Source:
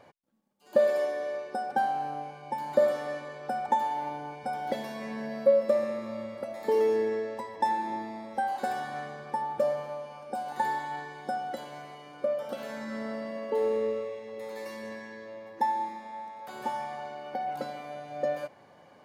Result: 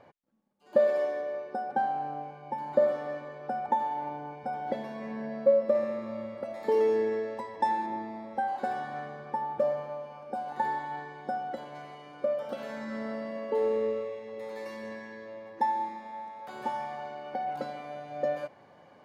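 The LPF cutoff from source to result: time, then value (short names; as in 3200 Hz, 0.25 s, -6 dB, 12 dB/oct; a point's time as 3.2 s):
LPF 6 dB/oct
2300 Hz
from 1.21 s 1400 Hz
from 5.75 s 2300 Hz
from 6.45 s 4200 Hz
from 7.86 s 1900 Hz
from 11.75 s 4000 Hz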